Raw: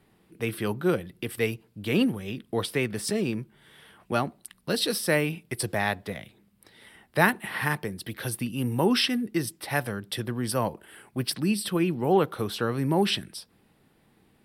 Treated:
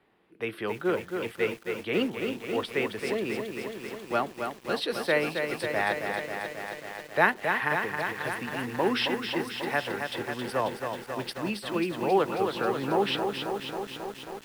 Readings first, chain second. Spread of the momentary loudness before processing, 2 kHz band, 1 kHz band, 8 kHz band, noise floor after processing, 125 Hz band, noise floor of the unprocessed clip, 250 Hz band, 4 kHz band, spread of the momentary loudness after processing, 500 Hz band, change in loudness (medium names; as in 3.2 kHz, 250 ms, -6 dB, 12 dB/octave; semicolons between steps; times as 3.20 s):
12 LU, +1.5 dB, +2.0 dB, -10.5 dB, -49 dBFS, -9.5 dB, -65 dBFS, -4.5 dB, -3.0 dB, 10 LU, +0.5 dB, -2.0 dB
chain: three-band isolator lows -13 dB, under 310 Hz, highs -16 dB, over 3.6 kHz; bit-crushed delay 270 ms, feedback 80%, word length 8-bit, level -5.5 dB